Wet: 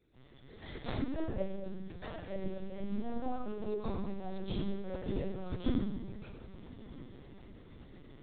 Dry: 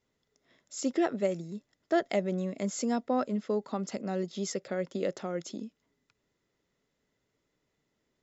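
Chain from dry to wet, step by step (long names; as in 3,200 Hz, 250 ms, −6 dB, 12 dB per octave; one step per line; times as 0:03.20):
stylus tracing distortion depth 0.047 ms
in parallel at −3 dB: bit-depth reduction 6 bits, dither none
on the sum: gate with flip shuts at −27 dBFS, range −32 dB
0:01.48–0:02.18: tuned comb filter 230 Hz, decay 0.6 s, harmonics all, mix 80%
soft clipping −31.5 dBFS, distortion −14 dB
feedback delay with all-pass diffusion 1,196 ms, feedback 51%, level −16 dB
convolution reverb RT60 1.1 s, pre-delay 120 ms, DRR −15.5 dB
linear-prediction vocoder at 8 kHz pitch kept
level +1 dB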